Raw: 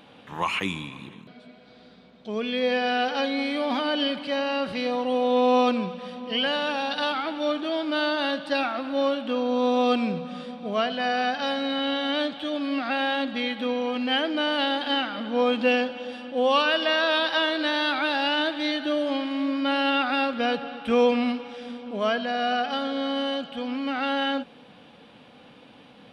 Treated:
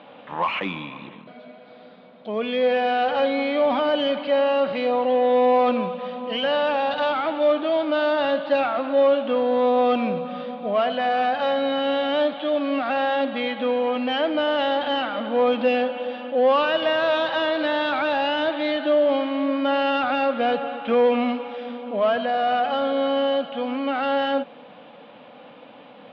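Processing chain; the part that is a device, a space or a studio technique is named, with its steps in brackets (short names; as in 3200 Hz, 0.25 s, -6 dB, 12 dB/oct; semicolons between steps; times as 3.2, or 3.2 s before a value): overdrive pedal into a guitar cabinet (overdrive pedal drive 17 dB, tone 1000 Hz, clips at -10 dBFS; speaker cabinet 110–4200 Hz, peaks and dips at 390 Hz -5 dB, 570 Hz +5 dB, 1600 Hz -3 dB)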